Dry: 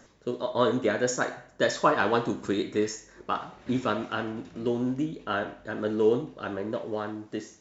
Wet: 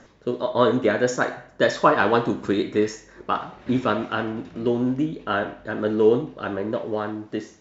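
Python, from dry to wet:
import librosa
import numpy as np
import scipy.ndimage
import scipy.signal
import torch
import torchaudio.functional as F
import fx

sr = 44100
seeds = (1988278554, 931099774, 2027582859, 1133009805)

y = scipy.signal.sosfilt(scipy.signal.bessel(2, 4200.0, 'lowpass', norm='mag', fs=sr, output='sos'), x)
y = y * 10.0 ** (5.5 / 20.0)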